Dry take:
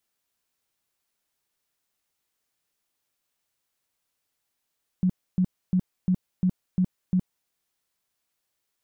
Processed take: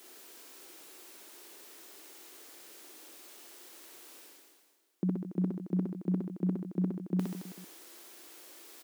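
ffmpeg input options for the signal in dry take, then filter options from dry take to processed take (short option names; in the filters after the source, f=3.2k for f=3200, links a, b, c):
-f lavfi -i "aevalsrc='0.126*sin(2*PI*183*mod(t,0.35))*lt(mod(t,0.35),12/183)':d=2.45:s=44100"
-af "areverse,acompressor=mode=upward:threshold=-34dB:ratio=2.5,areverse,highpass=f=340:t=q:w=4.2,aecho=1:1:60|132|218.4|322.1|446.5:0.631|0.398|0.251|0.158|0.1"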